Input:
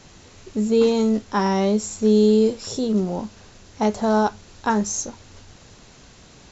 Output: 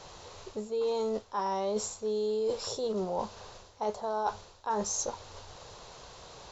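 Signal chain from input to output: ten-band EQ 250 Hz -10 dB, 500 Hz +9 dB, 1000 Hz +10 dB, 2000 Hz -3 dB, 4000 Hz +6 dB; reverse; compressor 8:1, threshold -24 dBFS, peak gain reduction 16.5 dB; reverse; gain -5 dB

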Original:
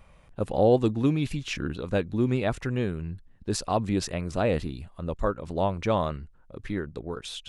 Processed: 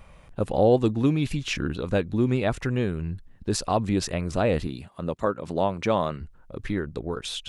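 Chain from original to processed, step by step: 4.67–6.21 HPF 130 Hz 12 dB/oct; in parallel at -2 dB: compressor, threshold -32 dBFS, peak gain reduction 15.5 dB

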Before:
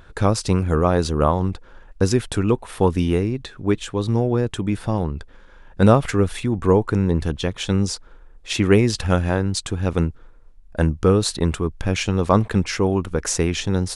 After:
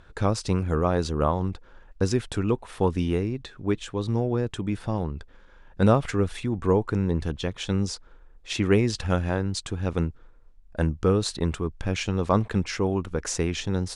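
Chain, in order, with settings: LPF 8600 Hz 12 dB/oct; gain -5.5 dB

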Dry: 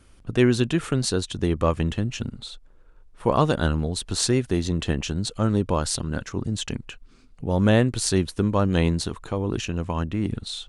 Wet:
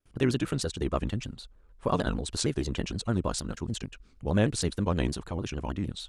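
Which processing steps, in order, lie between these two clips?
granular stretch 0.57×, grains 24 ms; gate with hold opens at -48 dBFS; shaped vibrato saw down 6.5 Hz, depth 160 cents; gain -5 dB

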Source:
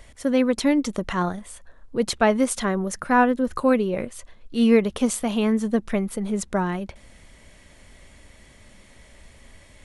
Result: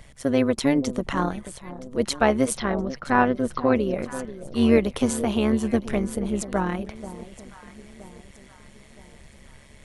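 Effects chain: 2.57–3.76 elliptic low-pass 5400 Hz, stop band 40 dB; echo with dull and thin repeats by turns 0.485 s, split 910 Hz, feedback 64%, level -13 dB; AM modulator 140 Hz, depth 50%; 4.77–5.89 three-band squash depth 40%; gain +2 dB

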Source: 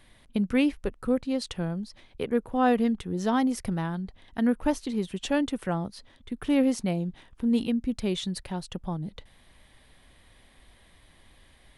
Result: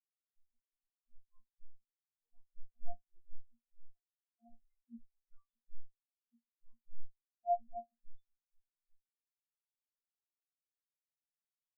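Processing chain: 3.89–4.45 weighting filter A; wavefolder -27.5 dBFS; resonator bank A#3 fifth, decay 0.41 s; spectral expander 4:1; gain +9.5 dB

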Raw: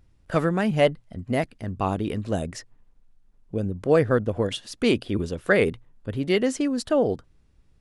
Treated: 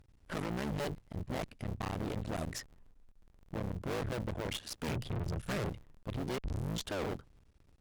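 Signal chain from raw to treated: cycle switcher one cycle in 3, muted; 4.88–5.69 resonant low shelf 200 Hz +10 dB, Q 1.5; 6.38 tape start 0.53 s; tube stage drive 35 dB, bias 0.65; gain +1.5 dB

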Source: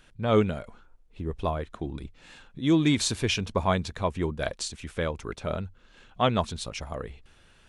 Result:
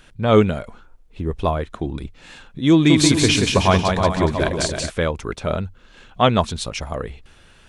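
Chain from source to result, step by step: 2.72–4.9 bouncing-ball echo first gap 0.18 s, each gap 0.75×, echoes 5; gain +8 dB

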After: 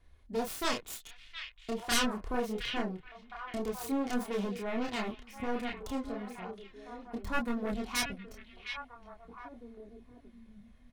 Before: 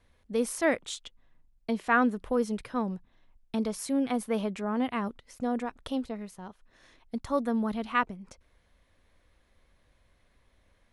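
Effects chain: self-modulated delay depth 0.84 ms; low shelf 120 Hz +7.5 dB; comb 2.8 ms, depth 30%; in parallel at -4 dB: overloaded stage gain 28.5 dB; on the sum: chorus voices 2, 0.26 Hz, delay 29 ms, depth 4.4 ms; on a send: delay with a stepping band-pass 0.715 s, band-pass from 2600 Hz, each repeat -1.4 oct, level -4 dB; on the sum: gain -4 dB

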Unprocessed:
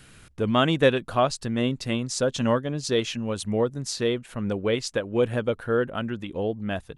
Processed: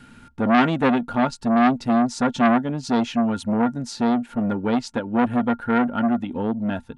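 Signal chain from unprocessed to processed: high shelf 6800 Hz -10 dB; small resonant body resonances 240/890/1400 Hz, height 17 dB, ringing for 85 ms; core saturation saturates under 1300 Hz

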